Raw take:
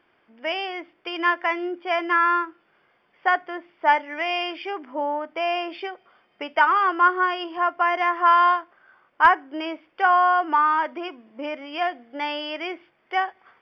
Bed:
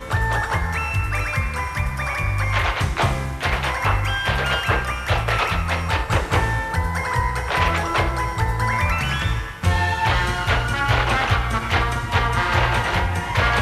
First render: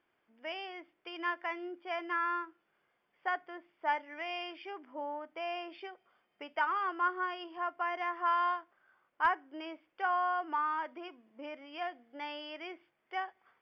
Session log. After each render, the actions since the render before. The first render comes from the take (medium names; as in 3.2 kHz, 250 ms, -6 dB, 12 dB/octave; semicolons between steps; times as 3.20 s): trim -13.5 dB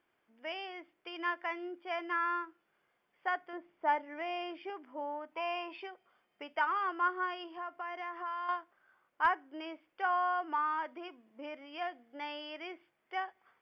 3.53–4.70 s: tilt shelf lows +5.5 dB, about 1.3 kHz; 5.32–5.84 s: small resonant body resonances 980/2600 Hz, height 14 dB, ringing for 35 ms; 7.34–8.49 s: compression 2.5:1, threshold -39 dBFS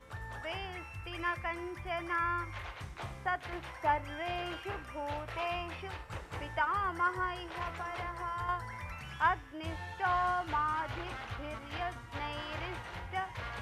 add bed -23 dB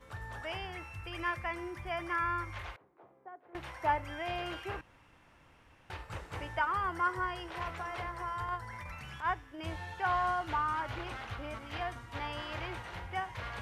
2.76–3.55 s: ladder band-pass 460 Hz, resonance 30%; 4.81–5.90 s: room tone; 8.45–9.59 s: transient shaper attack -11 dB, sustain -3 dB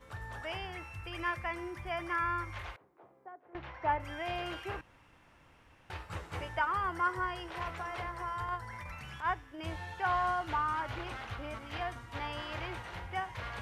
3.32–4.00 s: distance through air 220 m; 5.94–6.49 s: doubling 12 ms -5.5 dB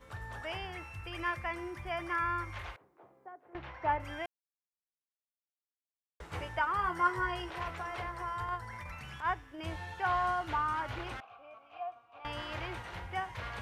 4.26–6.20 s: mute; 6.77–7.50 s: doubling 17 ms -3.5 dB; 11.20–12.25 s: vowel filter a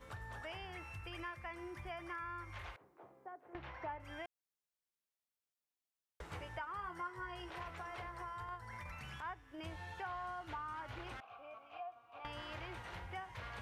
compression 3:1, threshold -46 dBFS, peak gain reduction 17 dB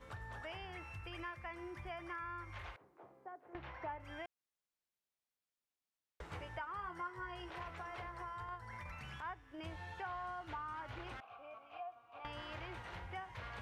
treble shelf 7.8 kHz -7.5 dB